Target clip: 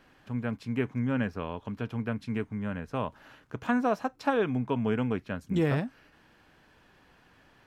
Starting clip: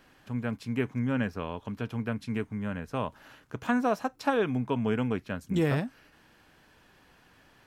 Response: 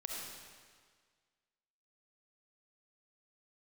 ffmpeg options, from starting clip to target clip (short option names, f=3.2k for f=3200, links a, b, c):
-af "highshelf=f=5.7k:g=-8"